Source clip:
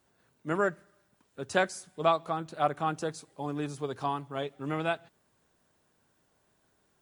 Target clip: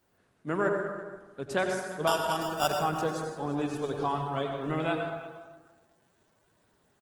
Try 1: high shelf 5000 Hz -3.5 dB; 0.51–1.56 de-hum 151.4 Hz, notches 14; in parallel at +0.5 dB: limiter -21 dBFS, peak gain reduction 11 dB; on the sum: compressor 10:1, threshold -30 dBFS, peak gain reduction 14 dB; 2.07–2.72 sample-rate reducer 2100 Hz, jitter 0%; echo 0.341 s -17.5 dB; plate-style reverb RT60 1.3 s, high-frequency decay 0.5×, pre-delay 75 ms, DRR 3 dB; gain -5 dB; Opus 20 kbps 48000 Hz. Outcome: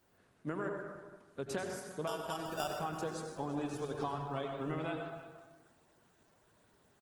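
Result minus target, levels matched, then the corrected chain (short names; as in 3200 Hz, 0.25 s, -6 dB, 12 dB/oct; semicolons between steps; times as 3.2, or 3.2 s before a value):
compressor: peak gain reduction +14 dB
high shelf 5000 Hz -3.5 dB; 0.51–1.56 de-hum 151.4 Hz, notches 14; in parallel at +0.5 dB: limiter -21 dBFS, peak gain reduction 11 dB; 2.07–2.72 on the sum: sample-rate reducer 2100 Hz, jitter 0%; echo 0.341 s -17.5 dB; plate-style reverb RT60 1.3 s, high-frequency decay 0.5×, pre-delay 75 ms, DRR 3 dB; gain -5 dB; Opus 20 kbps 48000 Hz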